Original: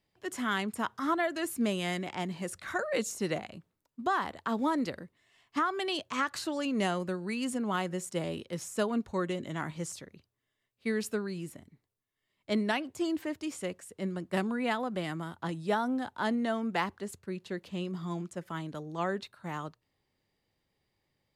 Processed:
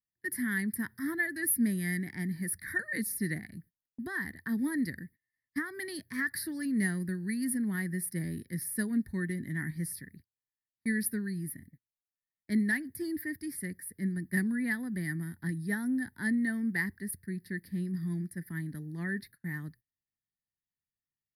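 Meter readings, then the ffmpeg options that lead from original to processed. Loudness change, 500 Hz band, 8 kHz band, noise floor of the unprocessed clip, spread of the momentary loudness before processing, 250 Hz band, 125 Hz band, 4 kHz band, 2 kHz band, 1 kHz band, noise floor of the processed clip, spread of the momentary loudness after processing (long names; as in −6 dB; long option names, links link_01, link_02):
0.0 dB, −11.0 dB, +5.0 dB, −82 dBFS, 9 LU, +1.5 dB, +3.5 dB, −11.5 dB, +3.0 dB, −18.5 dB, below −85 dBFS, 9 LU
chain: -af "firequalizer=gain_entry='entry(170,0);entry(270,-3);entry(550,-25);entry(1300,-22);entry(1800,6);entry(2700,-28);entry(4800,-4);entry(7100,-28);entry(10000,10)':delay=0.05:min_phase=1,agate=range=-25dB:threshold=-57dB:ratio=16:detection=peak,volume=4dB"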